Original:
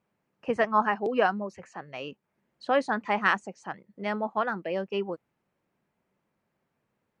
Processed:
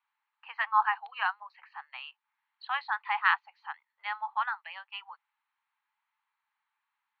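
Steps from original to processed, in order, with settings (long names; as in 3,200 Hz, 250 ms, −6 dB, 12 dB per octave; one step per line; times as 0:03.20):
Chebyshev band-pass filter 840–4,300 Hz, order 5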